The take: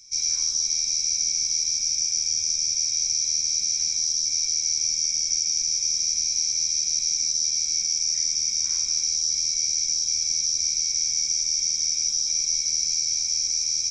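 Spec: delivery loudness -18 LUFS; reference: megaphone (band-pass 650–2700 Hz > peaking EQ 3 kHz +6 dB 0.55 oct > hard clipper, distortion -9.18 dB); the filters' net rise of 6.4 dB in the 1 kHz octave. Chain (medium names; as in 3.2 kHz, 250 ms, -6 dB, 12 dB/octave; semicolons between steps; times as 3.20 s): band-pass 650–2700 Hz; peaking EQ 1 kHz +8.5 dB; peaking EQ 3 kHz +6 dB 0.55 oct; hard clipper -37 dBFS; trim +19 dB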